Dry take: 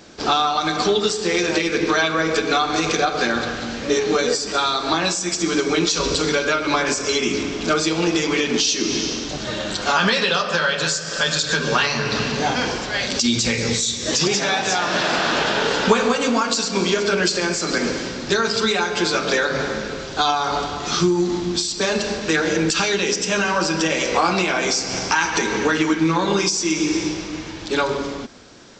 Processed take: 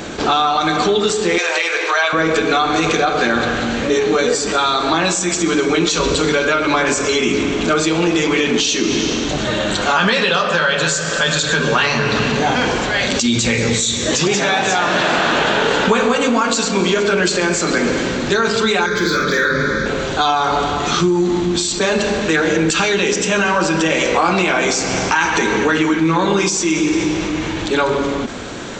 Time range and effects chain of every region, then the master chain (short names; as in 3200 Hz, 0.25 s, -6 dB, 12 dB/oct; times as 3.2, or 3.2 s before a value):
1.38–2.13 HPF 580 Hz 24 dB/oct + notch 3500 Hz, Q 22
18.86–19.86 hard clip -14 dBFS + fixed phaser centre 2800 Hz, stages 6 + doubler 49 ms -3.5 dB
whole clip: bell 5100 Hz -10.5 dB 0.48 oct; fast leveller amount 50%